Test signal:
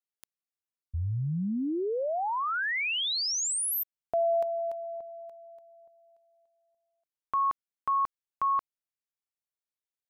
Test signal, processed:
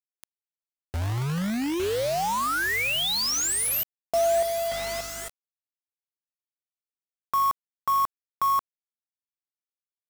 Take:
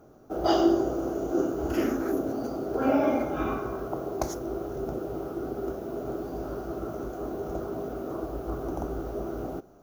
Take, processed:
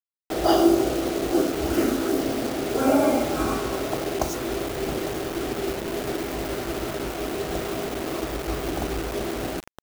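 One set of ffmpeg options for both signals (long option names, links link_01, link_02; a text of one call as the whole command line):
ffmpeg -i in.wav -af "aecho=1:1:854|1708|2562|3416:0.15|0.0748|0.0374|0.0187,aeval=exprs='val(0)+0.002*(sin(2*PI*50*n/s)+sin(2*PI*2*50*n/s)/2+sin(2*PI*3*50*n/s)/3+sin(2*PI*4*50*n/s)/4+sin(2*PI*5*50*n/s)/5)':channel_layout=same,acrusher=bits=5:mix=0:aa=0.000001,volume=4dB" out.wav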